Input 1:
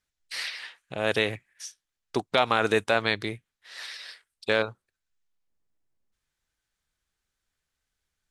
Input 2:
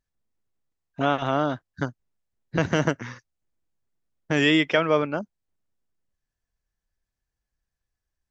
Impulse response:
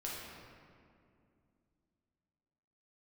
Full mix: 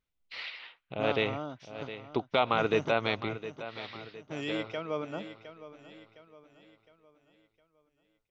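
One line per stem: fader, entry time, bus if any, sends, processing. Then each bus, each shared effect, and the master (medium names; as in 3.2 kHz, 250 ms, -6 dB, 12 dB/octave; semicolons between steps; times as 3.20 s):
3.86 s -3 dB -> 4.41 s -12.5 dB, 0.00 s, no send, echo send -13 dB, low-pass 3.5 kHz 24 dB/octave
-6.5 dB, 0.00 s, no send, echo send -20.5 dB, auto duck -9 dB, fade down 1.75 s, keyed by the first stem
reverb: none
echo: feedback delay 711 ms, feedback 43%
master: peaking EQ 1.7 kHz -12 dB 0.25 oct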